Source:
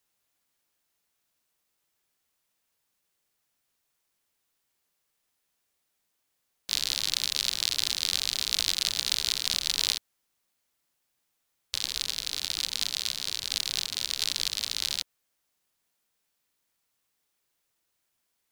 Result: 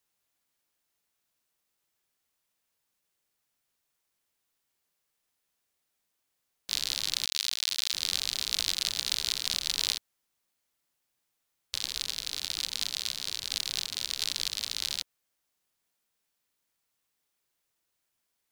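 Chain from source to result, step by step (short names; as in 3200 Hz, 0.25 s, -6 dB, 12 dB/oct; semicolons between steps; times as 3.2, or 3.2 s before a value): 7.25–7.94 requantised 6-bit, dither none; gain -2.5 dB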